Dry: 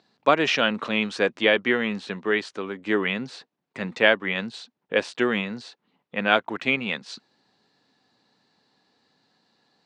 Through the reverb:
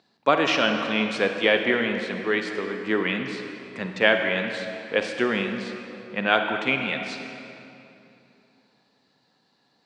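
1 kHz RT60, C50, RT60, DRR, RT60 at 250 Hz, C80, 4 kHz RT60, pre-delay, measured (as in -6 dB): 2.8 s, 5.0 dB, 2.9 s, 4.5 dB, 3.2 s, 6.0 dB, 2.1 s, 37 ms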